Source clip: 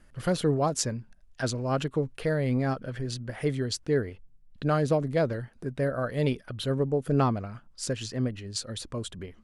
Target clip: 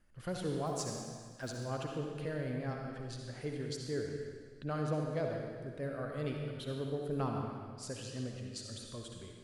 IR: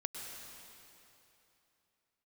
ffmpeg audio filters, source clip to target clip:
-filter_complex "[0:a]asettb=1/sr,asplit=3[a][b][c];[a]atrim=end=0.664[d];[b]atrim=start=0.66:end=1.58,asetpts=PTS-STARTPTS,afade=t=in:d=0.004:c=qsin,afade=t=out:st=0.916:d=0.004:c=qsin,acrusher=bits=7:mode=log:mix=0:aa=0.000001[e];[c]atrim=start=1.576[f];[d][e]acrossfade=d=0.004:c1=hsin:c2=qsin[g];[g][f]acrossfade=d=0.004:c1=qsin:c2=hsin[h];[1:a]atrim=start_sample=2205,asetrate=79380,aresample=44100[i];[h][i]afir=irnorm=-1:irlink=0,volume=-5dB"

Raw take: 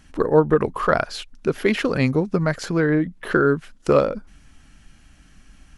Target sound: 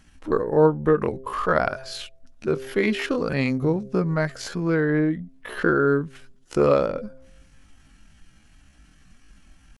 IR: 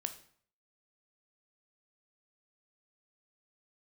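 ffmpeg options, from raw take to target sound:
-af "bandreject=f=132.2:t=h:w=4,bandreject=f=264.4:t=h:w=4,bandreject=f=396.6:t=h:w=4,bandreject=f=528.8:t=h:w=4,bandreject=f=661:t=h:w=4,atempo=0.59,volume=-2.5dB"

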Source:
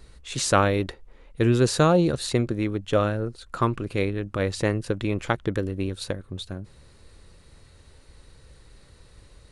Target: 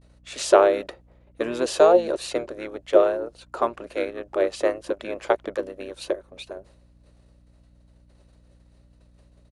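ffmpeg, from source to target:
-filter_complex "[0:a]agate=range=-33dB:threshold=-41dB:ratio=3:detection=peak,highpass=f=600:t=q:w=4.9,aeval=exprs='val(0)+0.00282*(sin(2*PI*60*n/s)+sin(2*PI*2*60*n/s)/2+sin(2*PI*3*60*n/s)/3+sin(2*PI*4*60*n/s)/4+sin(2*PI*5*60*n/s)/5)':c=same,asplit=2[a][b];[b]asetrate=29433,aresample=44100,atempo=1.49831,volume=-6dB[c];[a][c]amix=inputs=2:normalize=0,volume=-4dB"

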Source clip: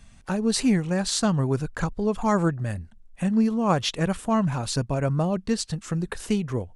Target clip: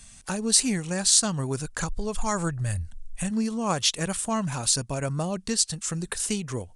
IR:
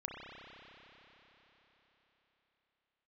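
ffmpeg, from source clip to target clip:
-filter_complex "[0:a]asplit=3[a][b][c];[a]afade=t=out:st=1.88:d=0.02[d];[b]asubboost=boost=9:cutoff=90,afade=t=in:st=1.88:d=0.02,afade=t=out:st=3.3:d=0.02[e];[c]afade=t=in:st=3.3:d=0.02[f];[d][e][f]amix=inputs=3:normalize=0,crystalizer=i=8:c=0,equalizer=f=3k:t=o:w=2.6:g=-3.5,asplit=2[g][h];[h]acompressor=threshold=-26dB:ratio=6,volume=-0.5dB[i];[g][i]amix=inputs=2:normalize=0,aresample=22050,aresample=44100,volume=-8.5dB"

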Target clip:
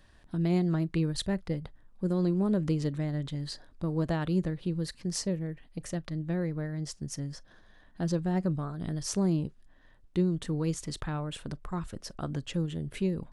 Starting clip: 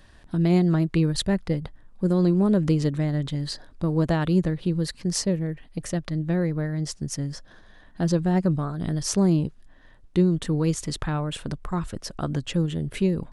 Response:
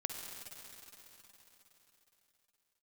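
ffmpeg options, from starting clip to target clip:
-filter_complex "[0:a]asplit=2[a][b];[1:a]atrim=start_sample=2205,atrim=end_sample=3528,asetrate=70560,aresample=44100[c];[b][c]afir=irnorm=-1:irlink=0,volume=-9dB[d];[a][d]amix=inputs=2:normalize=0,volume=-8.5dB"

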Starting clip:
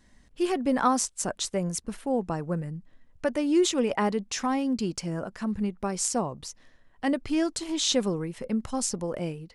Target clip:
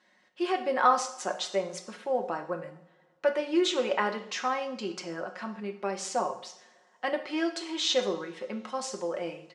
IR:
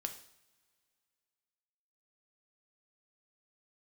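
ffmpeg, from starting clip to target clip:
-filter_complex "[0:a]highpass=500,lowpass=3.9k,aecho=1:1:5.5:0.56[a];[1:a]atrim=start_sample=2205[b];[a][b]afir=irnorm=-1:irlink=0,volume=2.5dB"

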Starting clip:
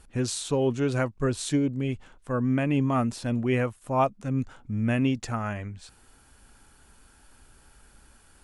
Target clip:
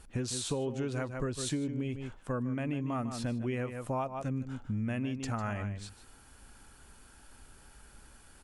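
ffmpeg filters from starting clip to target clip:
-filter_complex "[0:a]asplit=2[a][b];[b]adelay=151.6,volume=-11dB,highshelf=f=4k:g=-3.41[c];[a][c]amix=inputs=2:normalize=0,acompressor=threshold=-30dB:ratio=12"

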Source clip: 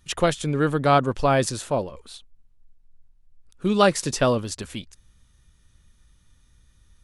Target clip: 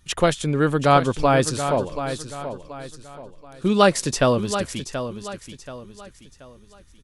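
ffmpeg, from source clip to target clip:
-af "aecho=1:1:730|1460|2190|2920:0.316|0.114|0.041|0.0148,volume=2dB"

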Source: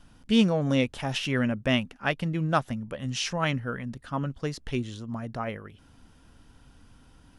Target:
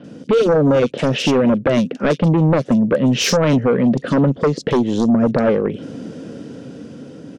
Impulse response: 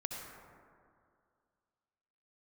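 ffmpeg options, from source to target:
-filter_complex "[0:a]highpass=f=150:w=0.5412,highpass=f=150:w=1.3066,afftfilt=real='re*lt(hypot(re,im),0.562)':imag='im*lt(hypot(re,im),0.562)':win_size=1024:overlap=0.75,lowpass=f=7.6k:w=0.5412,lowpass=f=7.6k:w=1.3066,lowshelf=f=680:t=q:w=3:g=9.5,dynaudnorm=f=320:g=9:m=11.5dB,asplit=2[a][b];[b]alimiter=limit=-14dB:level=0:latency=1:release=265,volume=0.5dB[c];[a][c]amix=inputs=2:normalize=0,acompressor=threshold=-17dB:ratio=3,aeval=exprs='0.562*(cos(1*acos(clip(val(0)/0.562,-1,1)))-cos(1*PI/2))+0.282*(cos(5*acos(clip(val(0)/0.562,-1,1)))-cos(5*PI/2))':c=same,acrossover=split=3500[d][e];[e]adelay=40[f];[d][f]amix=inputs=2:normalize=0,volume=-3.5dB"

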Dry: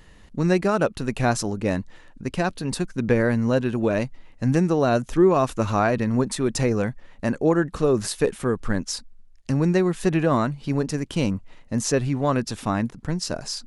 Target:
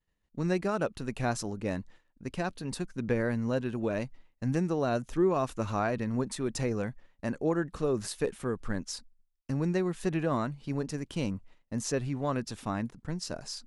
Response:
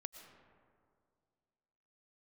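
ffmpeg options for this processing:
-af "agate=range=-33dB:threshold=-35dB:ratio=3:detection=peak,volume=-9dB"

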